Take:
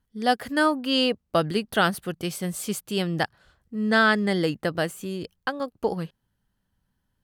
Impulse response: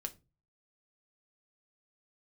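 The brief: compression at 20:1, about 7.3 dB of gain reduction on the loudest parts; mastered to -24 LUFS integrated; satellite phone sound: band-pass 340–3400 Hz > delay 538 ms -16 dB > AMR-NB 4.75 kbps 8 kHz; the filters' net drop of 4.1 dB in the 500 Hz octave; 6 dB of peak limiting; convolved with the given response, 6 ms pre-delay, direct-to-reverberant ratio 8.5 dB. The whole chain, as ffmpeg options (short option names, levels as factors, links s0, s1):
-filter_complex "[0:a]equalizer=f=500:t=o:g=-4,acompressor=threshold=0.0708:ratio=20,alimiter=limit=0.112:level=0:latency=1,asplit=2[s0][s1];[1:a]atrim=start_sample=2205,adelay=6[s2];[s1][s2]afir=irnorm=-1:irlink=0,volume=0.473[s3];[s0][s3]amix=inputs=2:normalize=0,highpass=340,lowpass=3400,aecho=1:1:538:0.158,volume=3.55" -ar 8000 -c:a libopencore_amrnb -b:a 4750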